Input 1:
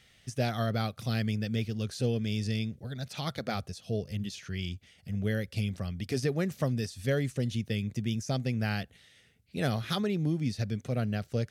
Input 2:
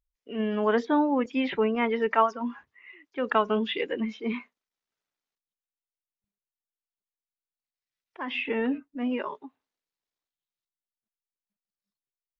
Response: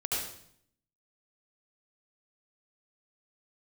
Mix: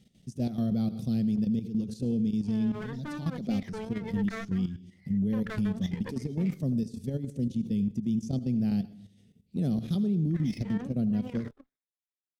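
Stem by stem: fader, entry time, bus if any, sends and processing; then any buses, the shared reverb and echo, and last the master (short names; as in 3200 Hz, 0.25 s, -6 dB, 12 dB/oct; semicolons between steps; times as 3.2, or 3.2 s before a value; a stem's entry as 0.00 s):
+1.0 dB, 0.00 s, send -17.5 dB, EQ curve 110 Hz 0 dB, 190 Hz +14 dB, 1600 Hz -19 dB, 3600 Hz -8 dB, 7100 Hz -5 dB; limiter -19.5 dBFS, peak gain reduction 7 dB
-7.5 dB, 2.15 s, no send, minimum comb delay 0.55 ms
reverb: on, RT60 0.65 s, pre-delay 67 ms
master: level quantiser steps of 12 dB; limiter -21.5 dBFS, peak gain reduction 5 dB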